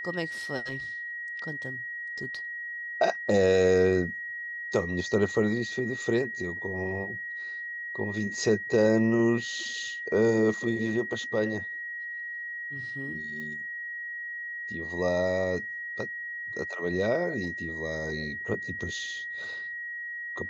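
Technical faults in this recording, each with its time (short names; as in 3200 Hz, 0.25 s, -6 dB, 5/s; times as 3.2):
tone 1900 Hz -34 dBFS
13.4 pop -27 dBFS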